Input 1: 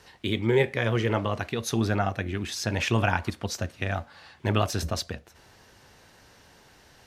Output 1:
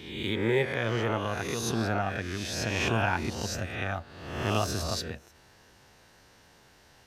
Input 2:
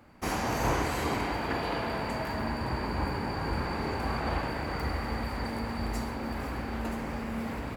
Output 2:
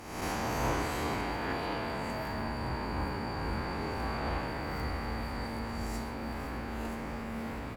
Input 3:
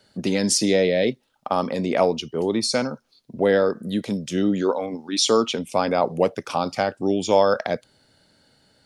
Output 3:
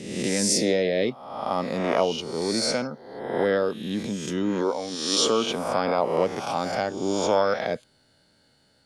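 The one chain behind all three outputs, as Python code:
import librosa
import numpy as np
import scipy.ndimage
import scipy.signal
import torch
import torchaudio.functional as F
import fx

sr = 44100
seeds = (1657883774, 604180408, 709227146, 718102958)

y = fx.spec_swells(x, sr, rise_s=0.98)
y = y * 10.0 ** (-5.5 / 20.0)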